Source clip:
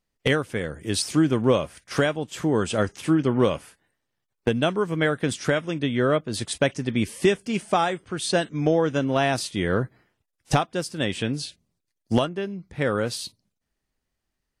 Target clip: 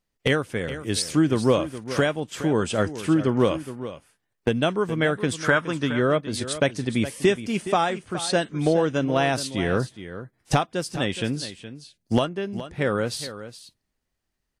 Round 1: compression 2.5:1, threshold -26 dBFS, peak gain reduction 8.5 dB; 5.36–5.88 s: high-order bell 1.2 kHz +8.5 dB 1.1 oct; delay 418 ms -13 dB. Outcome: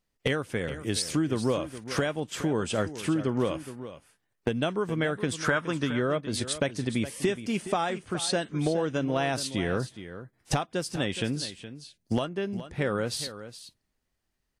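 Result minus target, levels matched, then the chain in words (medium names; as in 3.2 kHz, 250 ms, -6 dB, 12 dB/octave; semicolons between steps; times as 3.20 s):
compression: peak gain reduction +8.5 dB
5.36–5.88 s: high-order bell 1.2 kHz +8.5 dB 1.1 oct; delay 418 ms -13 dB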